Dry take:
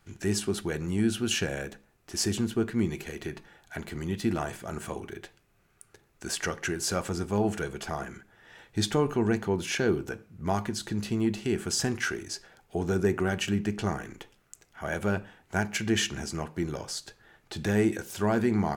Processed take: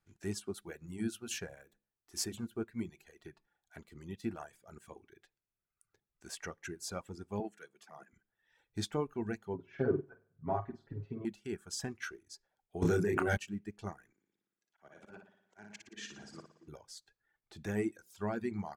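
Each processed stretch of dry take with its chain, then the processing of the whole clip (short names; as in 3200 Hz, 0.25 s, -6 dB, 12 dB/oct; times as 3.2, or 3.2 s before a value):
0.54–2.91 high shelf 8900 Hz +8 dB + notches 50/100/150/200/250/300/350 Hz
7.4–8.13 HPF 160 Hz 24 dB/oct + transient shaper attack -8 dB, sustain -4 dB
9.54–11.25 LPF 1200 Hz + comb 7.3 ms, depth 98% + flutter echo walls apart 8.3 m, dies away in 0.55 s
12.82–13.37 doubler 29 ms -3 dB + fast leveller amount 100%
14.12–16.68 three-band isolator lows -17 dB, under 160 Hz, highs -22 dB, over 7700 Hz + auto swell 0.192 s + flutter echo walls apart 9.9 m, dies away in 1.3 s
whole clip: notch 2900 Hz, Q 18; reverb removal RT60 1.4 s; upward expander 1.5:1, over -43 dBFS; gain -6.5 dB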